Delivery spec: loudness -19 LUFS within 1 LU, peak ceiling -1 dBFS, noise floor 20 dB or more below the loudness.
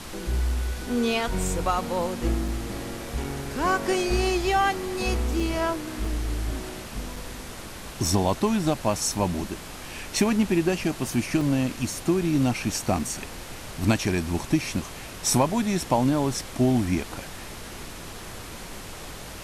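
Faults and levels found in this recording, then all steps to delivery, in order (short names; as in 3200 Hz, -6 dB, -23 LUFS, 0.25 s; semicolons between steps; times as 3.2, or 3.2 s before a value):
dropouts 7; longest dropout 3.6 ms; noise floor -39 dBFS; noise floor target -46 dBFS; loudness -26.0 LUFS; peak -8.5 dBFS; loudness target -19.0 LUFS
-> interpolate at 2.48/3.24/5.4/6.05/7.16/11.41/12.99, 3.6 ms; noise print and reduce 7 dB; gain +7 dB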